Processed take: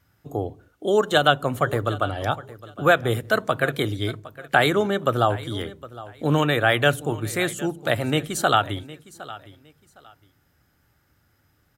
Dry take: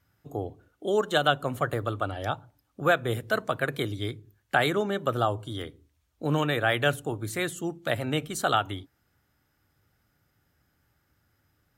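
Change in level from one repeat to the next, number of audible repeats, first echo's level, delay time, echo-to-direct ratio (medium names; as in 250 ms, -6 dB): -13.0 dB, 2, -18.0 dB, 761 ms, -18.0 dB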